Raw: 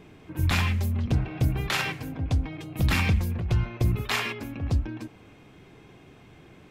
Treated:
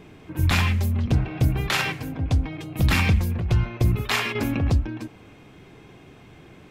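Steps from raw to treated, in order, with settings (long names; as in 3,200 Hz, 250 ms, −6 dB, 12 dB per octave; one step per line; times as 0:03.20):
0:04.35–0:04.78: envelope flattener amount 50%
level +3.5 dB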